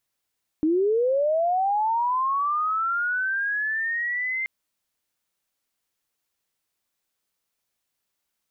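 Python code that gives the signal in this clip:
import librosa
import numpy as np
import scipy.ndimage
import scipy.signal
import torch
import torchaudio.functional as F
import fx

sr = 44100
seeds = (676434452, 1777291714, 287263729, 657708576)

y = fx.chirp(sr, length_s=3.83, from_hz=300.0, to_hz=2100.0, law='linear', from_db=-18.0, to_db=-24.5)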